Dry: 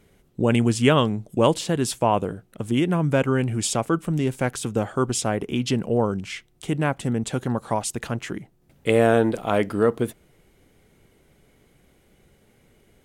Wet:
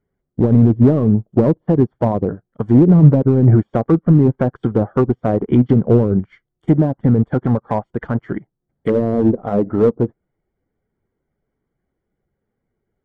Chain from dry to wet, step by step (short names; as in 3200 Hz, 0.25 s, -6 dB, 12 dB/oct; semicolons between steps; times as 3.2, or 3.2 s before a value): bin magnitudes rounded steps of 15 dB; treble ducked by the level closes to 430 Hz, closed at -17.5 dBFS; polynomial smoothing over 41 samples; in parallel at -3.5 dB: hard clip -20 dBFS, distortion -10 dB; on the sum: maximiser +16 dB; upward expander 2.5:1, over -28 dBFS